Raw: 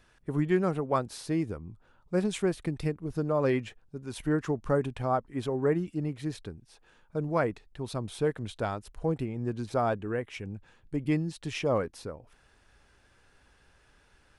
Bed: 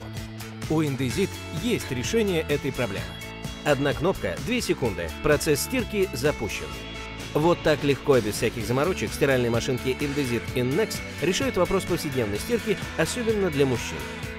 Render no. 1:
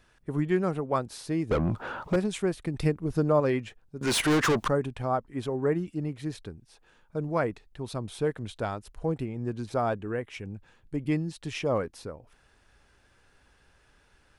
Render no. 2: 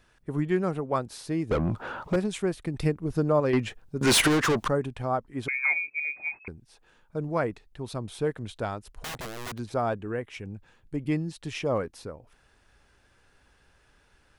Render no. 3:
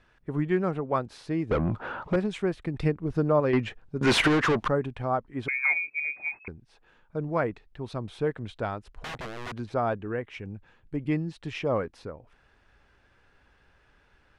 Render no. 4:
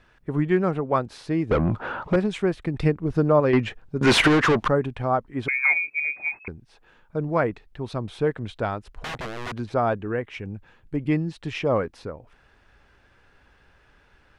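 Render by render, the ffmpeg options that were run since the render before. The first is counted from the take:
-filter_complex "[0:a]asettb=1/sr,asplit=3[a][b][c];[a]atrim=end=1.514[d];[b]atrim=start=1.51:end=2.16,asetpts=PTS-STARTPTS,afade=t=in:d=0.004:c=qsin,afade=t=out:st=0.646:d=0.004:c=qsin,asplit=2[e][f];[f]highpass=f=720:p=1,volume=41dB,asoftclip=type=tanh:threshold=-15.5dB[g];[e][g]amix=inputs=2:normalize=0,lowpass=f=1.2k:p=1,volume=-6dB[h];[c]atrim=start=2.156[i];[d][h]acrossfade=d=0.004:c1=hsin:c2=qsin[j];[j][i]acrossfade=d=0.004:c1=qsin:c2=hsin,asettb=1/sr,asplit=3[k][l][m];[k]atrim=end=4.014[n];[l]atrim=start=4.01:end=4.68,asetpts=PTS-STARTPTS,afade=t=in:d=0.004:c=qsin,afade=t=out:st=0.666:d=0.004:c=qsin,asplit=2[o][p];[p]highpass=f=720:p=1,volume=33dB,asoftclip=type=tanh:threshold=-16.5dB[q];[o][q]amix=inputs=2:normalize=0,lowpass=f=7.6k:p=1,volume=-6dB[r];[m]atrim=start=4.676[s];[n][r]acrossfade=d=0.004:c1=hsin:c2=qsin[t];[t][s]acrossfade=d=0.004:c1=qsin:c2=hsin,asplit=3[u][v][w];[u]atrim=end=2.742[x];[v]atrim=start=2.738:end=3.402,asetpts=PTS-STARTPTS,volume=5dB[y];[w]atrim=start=3.398[z];[x][y]acrossfade=d=0.004:c1=hsin:c2=hsin[aa];[aa][z]acrossfade=d=0.004:c1=hsin:c2=hsin"
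-filter_complex "[0:a]asettb=1/sr,asplit=3[a][b][c];[a]atrim=end=3.534[d];[b]atrim=start=3.53:end=4.28,asetpts=PTS-STARTPTS,afade=t=in:d=0.004:c=qsin,afade=t=out:st=0.746:d=0.004:c=qsin,aeval=exprs='0.141*sin(PI/2*1.58*val(0)/0.141)':c=same[e];[c]atrim=start=4.276[f];[d][e]acrossfade=d=0.004:c1=hsin:c2=qsin[g];[g][f]acrossfade=d=0.004:c1=qsin:c2=hsin,asettb=1/sr,asplit=3[h][i][j];[h]atrim=end=5.484[k];[i]atrim=start=5.48:end=6.48,asetpts=PTS-STARTPTS,afade=t=in:d=0.004:c=qsin,afade=t=out:st=0.996:d=0.004:c=qsin,lowpass=f=2.2k:t=q:w=0.5098,lowpass=f=2.2k:t=q:w=0.6013,lowpass=f=2.2k:t=q:w=0.9,lowpass=f=2.2k:t=q:w=2.563,afreqshift=-2600[l];[j]atrim=start=6.476[m];[k][l]acrossfade=d=0.004:c1=hsin:c2=qsin[n];[n][m]acrossfade=d=0.004:c1=qsin:c2=hsin,asplit=3[o][p][q];[o]afade=t=out:st=8.91:d=0.02[r];[p]aeval=exprs='(mod(35.5*val(0)+1,2)-1)/35.5':c=same,afade=t=in:st=8.91:d=0.02,afade=t=out:st=9.57:d=0.02[s];[q]afade=t=in:st=9.57:d=0.02[t];[r][s][t]amix=inputs=3:normalize=0"
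-af "lowpass=2.3k,aemphasis=mode=production:type=75kf"
-af "volume=4.5dB"

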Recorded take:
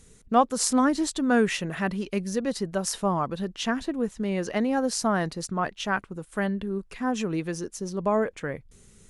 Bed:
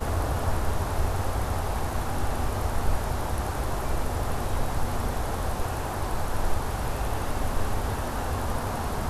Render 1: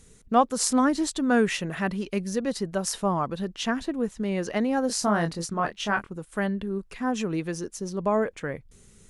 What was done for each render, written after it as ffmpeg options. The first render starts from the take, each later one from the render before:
-filter_complex "[0:a]asettb=1/sr,asplit=3[a][b][c];[a]atrim=end=4.874[d];[b]atrim=start=4.87:end=6.1,asetpts=PTS-STARTPTS,afade=t=in:d=0.004:c=qsin,afade=t=out:st=1.226:d=0.004:c=qsin,asplit=2[e][f];[f]adelay=24,volume=-6dB[g];[e][g]amix=inputs=2:normalize=0,atrim=end_sample=54243[h];[c]atrim=start=6.096[i];[d][h]acrossfade=d=0.004:c1=hsin:c2=qsin[j];[j][i]acrossfade=d=0.004:c1=qsin:c2=hsin"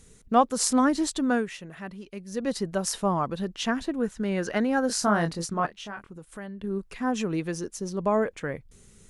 -filter_complex "[0:a]asettb=1/sr,asplit=3[a][b][c];[a]atrim=end=3.974[d];[b]atrim=start=3.97:end=5.14,asetpts=PTS-STARTPTS,afade=t=in:d=0.004:c=qsin,afade=t=out:st=1.166:d=0.004:c=qsin,equalizer=f=1.5k:t=o:w=0.28:g=9.5[e];[c]atrim=start=5.136[f];[d][e]acrossfade=d=0.004:c1=hsin:c2=qsin[g];[g][f]acrossfade=d=0.004:c1=qsin:c2=hsin,asettb=1/sr,asplit=3[h][i][j];[h]atrim=end=5.664[k];[i]atrim=start=5.66:end=6.64,asetpts=PTS-STARTPTS,afade=t=in:d=0.004:c=qsin,afade=t=out:st=0.976:d=0.004:c=qsin,acompressor=threshold=-44dB:ratio=2:attack=3.2:release=140:knee=1:detection=peak[l];[j]atrim=start=6.636[m];[k][l]acrossfade=d=0.004:c1=hsin:c2=qsin[n];[n][m]acrossfade=d=0.004:c1=qsin:c2=hsin,asplit=3[o][p][q];[o]atrim=end=1.46,asetpts=PTS-STARTPTS,afade=t=out:st=1.26:d=0.2:silence=0.281838[r];[p]atrim=start=1.46:end=2.27,asetpts=PTS-STARTPTS,volume=-11dB[s];[q]atrim=start=2.27,asetpts=PTS-STARTPTS,afade=t=in:d=0.2:silence=0.281838[t];[r][s][t]concat=n=3:v=0:a=1"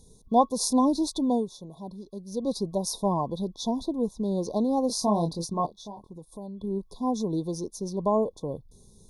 -af "afftfilt=real='re*(1-between(b*sr/4096,1100,3400))':imag='im*(1-between(b*sr/4096,1100,3400))':win_size=4096:overlap=0.75,equalizer=f=7.6k:w=6.6:g=-14.5"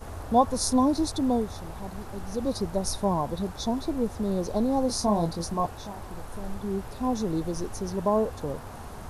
-filter_complex "[1:a]volume=-11.5dB[a];[0:a][a]amix=inputs=2:normalize=0"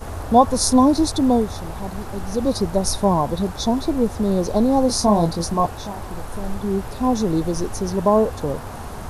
-af "volume=8dB,alimiter=limit=-2dB:level=0:latency=1"

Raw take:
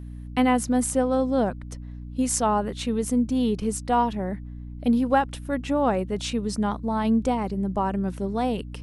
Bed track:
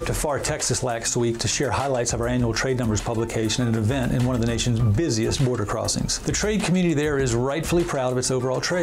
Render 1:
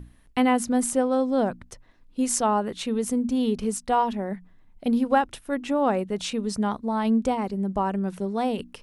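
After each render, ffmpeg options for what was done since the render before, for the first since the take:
-af "bandreject=f=60:t=h:w=6,bandreject=f=120:t=h:w=6,bandreject=f=180:t=h:w=6,bandreject=f=240:t=h:w=6,bandreject=f=300:t=h:w=6"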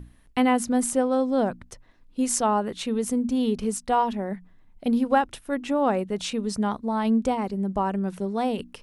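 -af anull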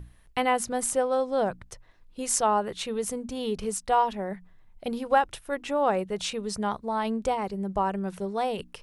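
-af "equalizer=f=250:t=o:w=0.53:g=-12.5"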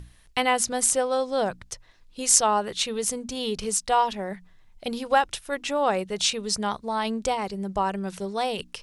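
-af "equalizer=f=5.4k:w=0.49:g=10.5"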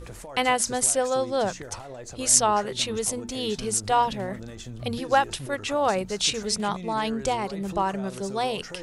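-filter_complex "[1:a]volume=-17dB[a];[0:a][a]amix=inputs=2:normalize=0"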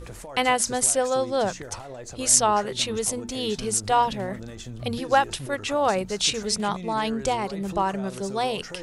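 -af "volume=1dB,alimiter=limit=-3dB:level=0:latency=1"

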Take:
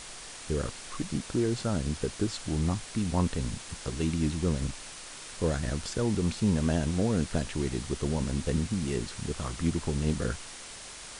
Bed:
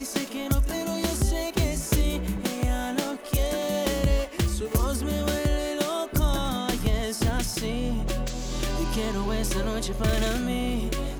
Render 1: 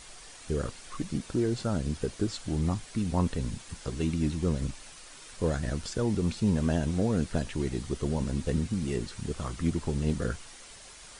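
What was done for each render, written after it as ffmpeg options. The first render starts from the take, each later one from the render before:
-af "afftdn=nr=7:nf=-44"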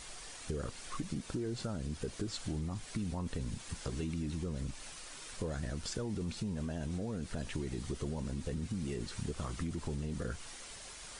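-af "alimiter=limit=-23dB:level=0:latency=1:release=19,acompressor=threshold=-34dB:ratio=6"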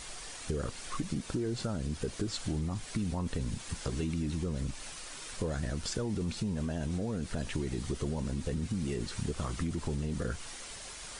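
-af "volume=4dB"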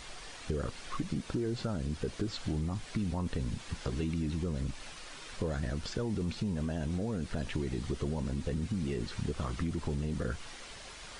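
-filter_complex "[0:a]acrossover=split=5200[a][b];[b]acompressor=threshold=-58dB:ratio=4:attack=1:release=60[c];[a][c]amix=inputs=2:normalize=0"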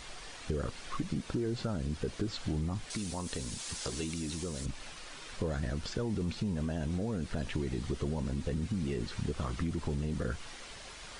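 -filter_complex "[0:a]asettb=1/sr,asplit=3[a][b][c];[a]atrim=end=2.904[d];[b]atrim=start=2.9:end=4.66,asetpts=PTS-STARTPTS,afade=t=in:d=0.004:c=qsin,afade=t=out:st=1.756:d=0.004:c=qsin,bass=f=250:g=-7,treble=f=4k:g=14[e];[c]atrim=start=4.656[f];[d][e]acrossfade=d=0.004:c1=hsin:c2=qsin[g];[g][f]acrossfade=d=0.004:c1=qsin:c2=hsin"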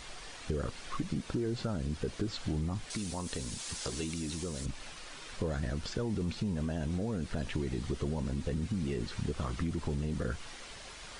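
-af anull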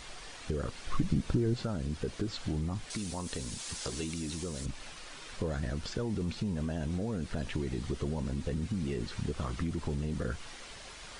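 -filter_complex "[0:a]asettb=1/sr,asplit=3[a][b][c];[a]atrim=end=0.874[d];[b]atrim=start=0.87:end=1.54,asetpts=PTS-STARTPTS,afade=t=in:d=0.004:c=qsin,afade=t=out:st=0.666:d=0.004:c=qsin,lowshelf=f=180:g=11[e];[c]atrim=start=1.536[f];[d][e]acrossfade=d=0.004:c1=hsin:c2=qsin[g];[g][f]acrossfade=d=0.004:c1=qsin:c2=hsin"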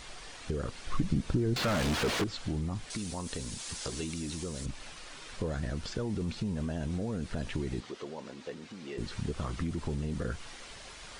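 -filter_complex "[0:a]asettb=1/sr,asplit=3[a][b][c];[a]atrim=end=1.564[d];[b]atrim=start=1.56:end=2.24,asetpts=PTS-STARTPTS,afade=t=in:d=0.004:c=qsin,afade=t=out:st=0.676:d=0.004:c=qsin,asplit=2[e][f];[f]highpass=f=720:p=1,volume=41dB,asoftclip=type=tanh:threshold=-22dB[g];[e][g]amix=inputs=2:normalize=0,lowpass=f=2.7k:p=1,volume=-6dB[h];[c]atrim=start=2.236[i];[d][h]acrossfade=d=0.004:c1=hsin:c2=qsin[j];[j][i]acrossfade=d=0.004:c1=qsin:c2=hsin,asettb=1/sr,asplit=3[k][l][m];[k]atrim=end=7.804[n];[l]atrim=start=7.8:end=8.98,asetpts=PTS-STARTPTS,afade=t=in:d=0.004:c=qsin,afade=t=out:st=1.176:d=0.004:c=qsin,highpass=400,lowpass=5.9k[o];[m]atrim=start=8.976[p];[n][o]acrossfade=d=0.004:c1=hsin:c2=qsin[q];[q][p]acrossfade=d=0.004:c1=qsin:c2=hsin"

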